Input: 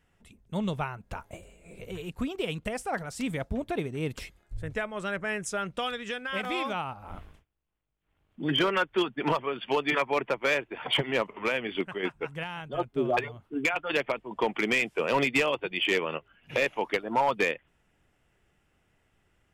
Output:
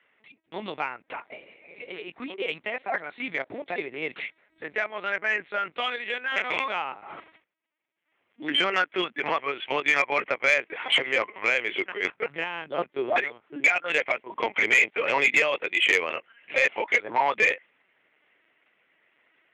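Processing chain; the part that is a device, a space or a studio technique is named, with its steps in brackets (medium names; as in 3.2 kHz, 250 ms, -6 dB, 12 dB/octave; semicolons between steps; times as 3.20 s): 12.21–12.83 s: bass shelf 390 Hz +9.5 dB; talking toy (LPC vocoder at 8 kHz pitch kept; high-pass 390 Hz 12 dB/octave; peaking EQ 2.1 kHz +10 dB 0.58 oct; saturation -13 dBFS, distortion -18 dB); trim +2.5 dB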